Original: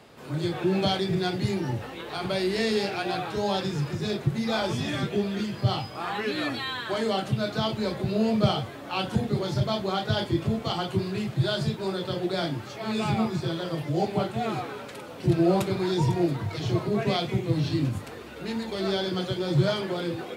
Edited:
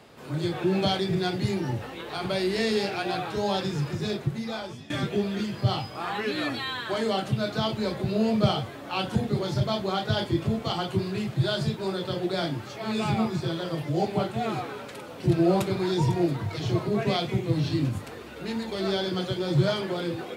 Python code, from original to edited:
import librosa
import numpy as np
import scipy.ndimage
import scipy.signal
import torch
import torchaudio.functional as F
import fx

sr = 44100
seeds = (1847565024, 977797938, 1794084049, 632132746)

y = fx.edit(x, sr, fx.fade_out_to(start_s=4.04, length_s=0.86, floor_db=-20.5), tone=tone)